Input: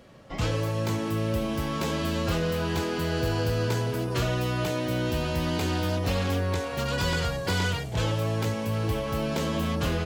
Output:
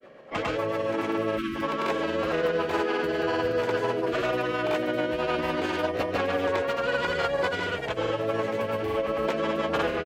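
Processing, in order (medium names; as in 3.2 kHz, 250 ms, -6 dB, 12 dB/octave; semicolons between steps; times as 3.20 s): spectral selection erased 1.36–1.62 s, 420–1100 Hz; three-band isolator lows -22 dB, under 320 Hz, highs -16 dB, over 2.7 kHz; in parallel at 0 dB: peak limiter -28 dBFS, peak gain reduction 8.5 dB; on the sum: rotary cabinet horn 7 Hz; granulator 100 ms, pitch spread up and down by 0 st; trim +5 dB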